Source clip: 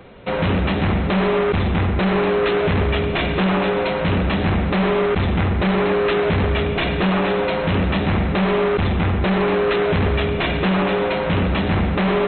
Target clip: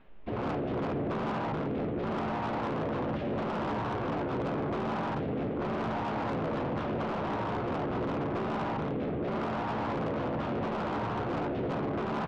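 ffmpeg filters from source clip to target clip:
-filter_complex "[0:a]aeval=exprs='abs(val(0))':c=same,bandreject=f=152.6:t=h:w=4,bandreject=f=305.2:t=h:w=4,bandreject=f=457.8:t=h:w=4,bandreject=f=610.4:t=h:w=4,bandreject=f=763:t=h:w=4,bandreject=f=915.6:t=h:w=4,bandreject=f=1.0682k:t=h:w=4,bandreject=f=1.2208k:t=h:w=4,bandreject=f=1.3734k:t=h:w=4,bandreject=f=1.526k:t=h:w=4,bandreject=f=1.6786k:t=h:w=4,bandreject=f=1.8312k:t=h:w=4,bandreject=f=1.9838k:t=h:w=4,bandreject=f=2.1364k:t=h:w=4,bandreject=f=2.289k:t=h:w=4,bandreject=f=2.4416k:t=h:w=4,bandreject=f=2.5942k:t=h:w=4,bandreject=f=2.7468k:t=h:w=4,bandreject=f=2.8994k:t=h:w=4,bandreject=f=3.052k:t=h:w=4,bandreject=f=3.2046k:t=h:w=4,bandreject=f=3.3572k:t=h:w=4,bandreject=f=3.5098k:t=h:w=4,bandreject=f=3.6624k:t=h:w=4,bandreject=f=3.815k:t=h:w=4,bandreject=f=3.9676k:t=h:w=4,bandreject=f=4.1202k:t=h:w=4,bandreject=f=4.2728k:t=h:w=4,bandreject=f=4.4254k:t=h:w=4,bandreject=f=4.578k:t=h:w=4,bandreject=f=4.7306k:t=h:w=4,bandreject=f=4.8832k:t=h:w=4,bandreject=f=5.0358k:t=h:w=4,bandreject=f=5.1884k:t=h:w=4,bandreject=f=5.341k:t=h:w=4,bandreject=f=5.4936k:t=h:w=4,bandreject=f=5.6462k:t=h:w=4,bandreject=f=5.7988k:t=h:w=4,bandreject=f=5.9514k:t=h:w=4,bandreject=f=6.104k:t=h:w=4,areverse,acompressor=mode=upward:threshold=-31dB:ratio=2.5,areverse,afwtdn=0.0708,lowpass=f=3.3k:w=0.5412,lowpass=f=3.3k:w=1.3066,asplit=2[a][b];[b]adelay=14,volume=-8.5dB[c];[a][c]amix=inputs=2:normalize=0,afftfilt=real='re*lt(hypot(re,im),0.355)':imag='im*lt(hypot(re,im),0.355)':win_size=1024:overlap=0.75,acontrast=36,asoftclip=type=tanh:threshold=-23.5dB,equalizer=f=180:w=0.31:g=4,volume=-7.5dB"

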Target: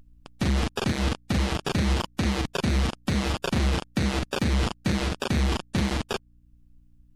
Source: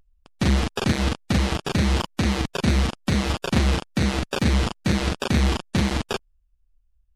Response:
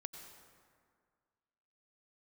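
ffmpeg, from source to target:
-af "acontrast=60,alimiter=limit=-15.5dB:level=0:latency=1:release=440,aeval=exprs='val(0)+0.00126*(sin(2*PI*60*n/s)+sin(2*PI*2*60*n/s)/2+sin(2*PI*3*60*n/s)/3+sin(2*PI*4*60*n/s)/4+sin(2*PI*5*60*n/s)/5)':c=same"

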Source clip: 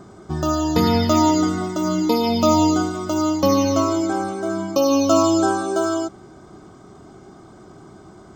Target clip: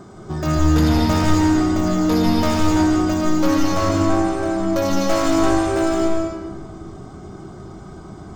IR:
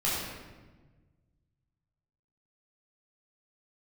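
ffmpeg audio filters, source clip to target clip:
-filter_complex "[0:a]asoftclip=type=tanh:threshold=-21dB,asplit=2[a][b];[1:a]atrim=start_sample=2205,lowshelf=f=110:g=10.5,adelay=137[c];[b][c]afir=irnorm=-1:irlink=0,volume=-10.5dB[d];[a][d]amix=inputs=2:normalize=0,volume=2dB"

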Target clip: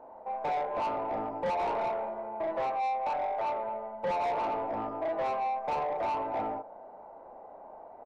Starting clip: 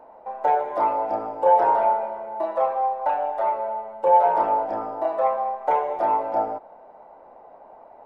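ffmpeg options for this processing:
-filter_complex "[0:a]asplit=2[a][b];[b]adelay=37,volume=-3dB[c];[a][c]amix=inputs=2:normalize=0,asoftclip=type=tanh:threshold=-24.5dB,highshelf=f=2k:g=-10.5,volume=-2dB"

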